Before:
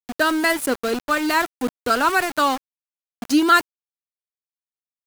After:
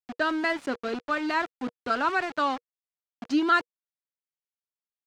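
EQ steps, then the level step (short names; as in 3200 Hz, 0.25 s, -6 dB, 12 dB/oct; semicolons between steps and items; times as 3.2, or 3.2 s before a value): air absorption 150 m; low shelf 83 Hz -10 dB; notch 480 Hz, Q 12; -6.0 dB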